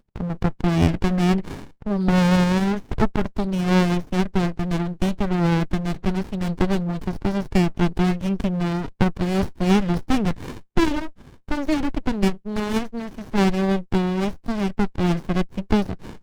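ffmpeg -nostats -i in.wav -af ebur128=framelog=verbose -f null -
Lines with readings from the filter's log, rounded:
Integrated loudness:
  I:         -22.8 LUFS
  Threshold: -32.9 LUFS
Loudness range:
  LRA:         2.9 LU
  Threshold: -43.0 LUFS
  LRA low:   -24.2 LUFS
  LRA high:  -21.3 LUFS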